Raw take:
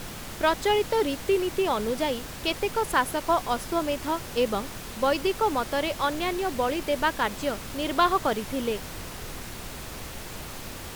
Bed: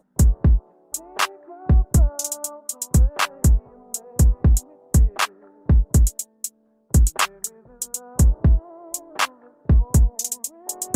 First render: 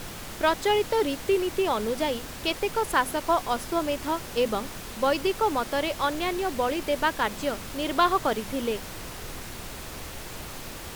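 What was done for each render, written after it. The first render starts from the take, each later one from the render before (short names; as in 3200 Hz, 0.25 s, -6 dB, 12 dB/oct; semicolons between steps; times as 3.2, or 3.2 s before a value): de-hum 50 Hz, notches 5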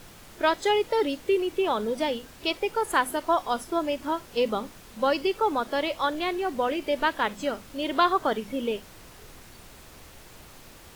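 noise print and reduce 10 dB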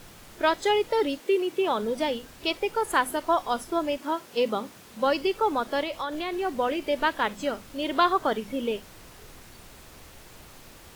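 1.18–1.81 HPF 240 Hz -> 73 Hz 24 dB/oct; 3.97–5.04 HPF 240 Hz -> 75 Hz; 5.83–6.33 compressor 4:1, threshold -27 dBFS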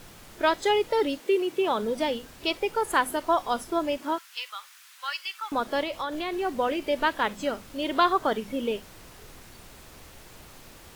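4.18–5.52 HPF 1300 Hz 24 dB/oct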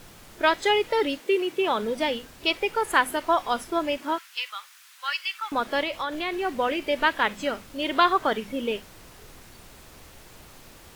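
dynamic EQ 2200 Hz, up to +6 dB, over -42 dBFS, Q 0.94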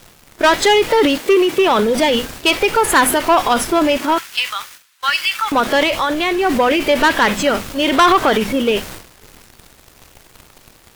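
transient shaper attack +2 dB, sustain +8 dB; sample leveller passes 3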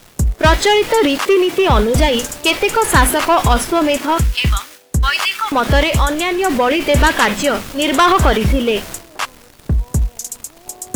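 add bed -0.5 dB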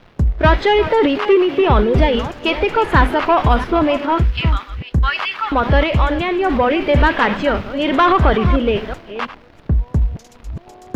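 reverse delay 0.331 s, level -12.5 dB; air absorption 320 m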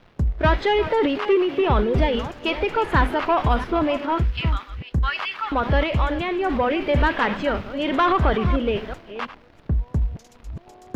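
gain -6 dB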